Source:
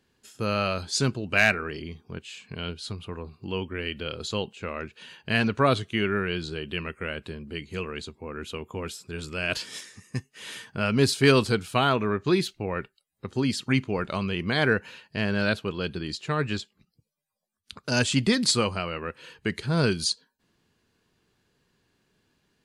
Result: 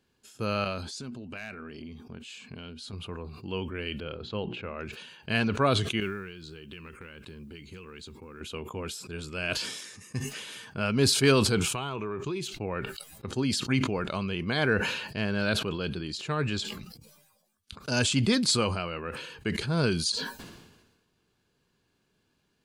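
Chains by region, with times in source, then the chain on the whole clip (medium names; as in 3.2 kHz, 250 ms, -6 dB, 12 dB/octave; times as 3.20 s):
0.64–2.93 s: peaking EQ 240 Hz +12.5 dB 0.21 oct + compression 4:1, threshold -36 dBFS
4.00–4.79 s: distance through air 370 m + hum notches 60/120/180/240/300/360 Hz
6.00–8.41 s: compression 12:1, threshold -36 dBFS + peaking EQ 670 Hz -14.5 dB 0.35 oct + modulation noise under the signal 34 dB
11.57–12.52 s: rippled EQ curve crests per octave 0.71, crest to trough 7 dB + compression 10:1, threshold -26 dBFS
whole clip: band-stop 1.9 kHz, Q 10; decay stretcher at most 48 dB/s; trim -3 dB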